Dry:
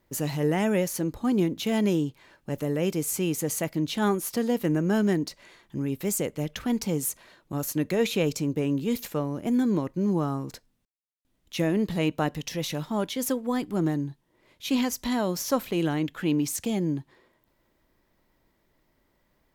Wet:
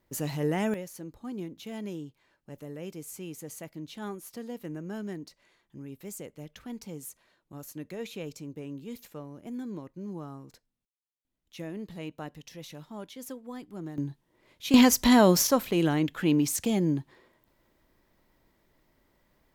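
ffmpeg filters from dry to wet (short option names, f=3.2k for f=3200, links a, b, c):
-af "asetnsamples=n=441:p=0,asendcmd='0.74 volume volume -13.5dB;13.98 volume volume -1.5dB;14.74 volume volume 8dB;15.47 volume volume 1dB',volume=-3.5dB"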